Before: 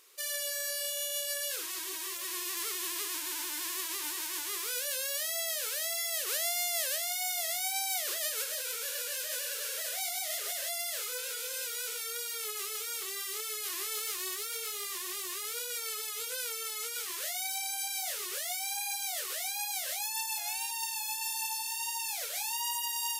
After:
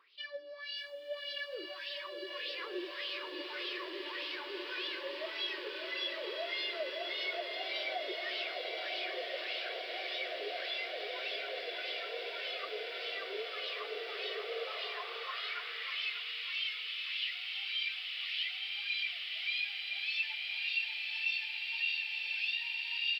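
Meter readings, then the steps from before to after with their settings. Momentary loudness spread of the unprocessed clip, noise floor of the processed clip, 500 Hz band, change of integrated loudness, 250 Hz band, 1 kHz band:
4 LU, -45 dBFS, +3.0 dB, -4.0 dB, n/a, -4.5 dB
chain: wah 1.7 Hz 370–3200 Hz, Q 4.6; phaser 0.38 Hz, delay 1.9 ms, feedback 36%; downsampling 11025 Hz; bell 260 Hz +3.5 dB 0.4 oct; on a send: diffused feedback echo 1.059 s, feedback 78%, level -3.5 dB; on the sum: high-pass sweep 220 Hz -> 2600 Hz, 13.76–16.14; bell 1200 Hz -4 dB 2 oct; in parallel at -0.5 dB: limiter -38 dBFS, peak gain reduction 10 dB; on the sum: lo-fi delay 0.596 s, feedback 35%, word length 11-bit, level -9 dB; gain +2.5 dB

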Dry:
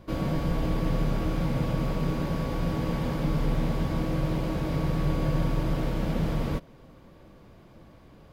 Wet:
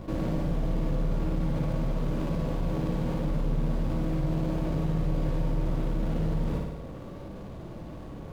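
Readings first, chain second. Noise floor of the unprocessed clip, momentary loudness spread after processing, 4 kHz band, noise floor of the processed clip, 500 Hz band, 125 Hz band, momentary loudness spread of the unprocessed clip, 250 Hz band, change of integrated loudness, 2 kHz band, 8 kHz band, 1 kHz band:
-53 dBFS, 13 LU, -7.0 dB, -41 dBFS, -2.0 dB, -1.5 dB, 2 LU, -1.5 dB, -1.5 dB, -6.5 dB, n/a, -4.5 dB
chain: median filter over 25 samples; flutter echo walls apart 9.7 m, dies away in 0.6 s; fast leveller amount 50%; gain -5.5 dB

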